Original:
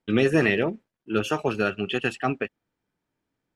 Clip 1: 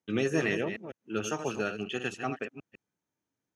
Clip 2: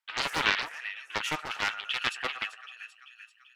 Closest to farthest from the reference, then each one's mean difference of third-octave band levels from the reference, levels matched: 1, 2; 3.0, 13.0 decibels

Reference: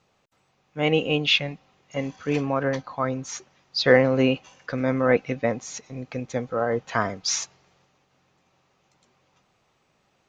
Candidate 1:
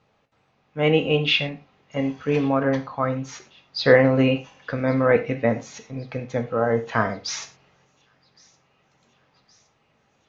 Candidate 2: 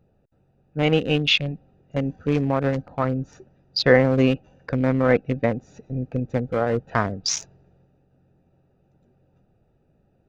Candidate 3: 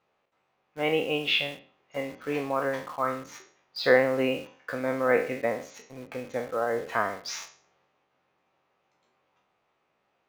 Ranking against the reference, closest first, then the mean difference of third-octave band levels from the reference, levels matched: 1, 2, 3; 2.5, 4.0, 7.0 decibels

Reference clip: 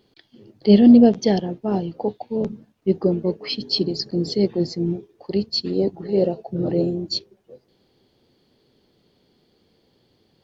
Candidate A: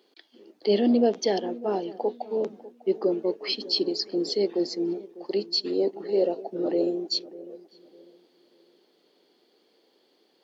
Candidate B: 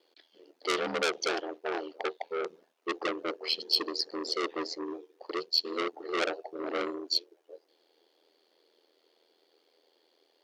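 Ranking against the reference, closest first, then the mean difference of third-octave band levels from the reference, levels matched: A, B; 5.5, 11.5 decibels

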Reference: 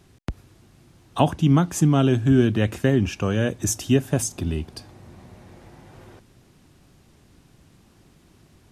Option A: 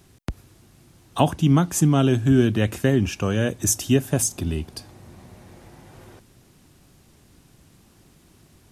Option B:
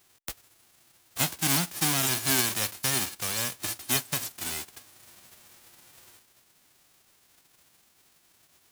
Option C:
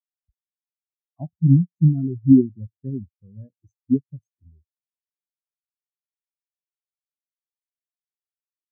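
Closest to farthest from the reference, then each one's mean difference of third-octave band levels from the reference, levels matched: A, B, C; 1.0, 12.0, 17.0 decibels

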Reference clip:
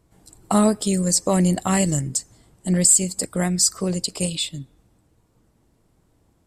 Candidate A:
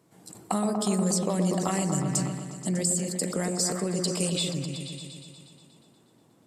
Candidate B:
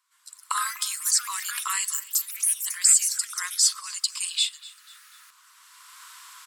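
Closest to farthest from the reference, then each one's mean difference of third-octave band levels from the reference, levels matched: A, B; 8.5, 16.5 decibels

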